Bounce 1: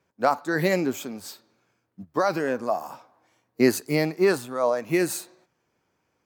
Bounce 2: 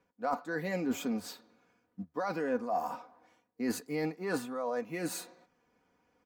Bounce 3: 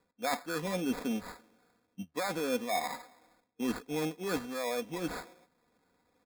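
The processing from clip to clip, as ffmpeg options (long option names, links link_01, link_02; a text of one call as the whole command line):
ffmpeg -i in.wav -af "areverse,acompressor=threshold=-30dB:ratio=10,areverse,highshelf=frequency=3800:gain=-9.5,aecho=1:1:4.1:0.63" out.wav
ffmpeg -i in.wav -af "acrusher=samples=15:mix=1:aa=0.000001" out.wav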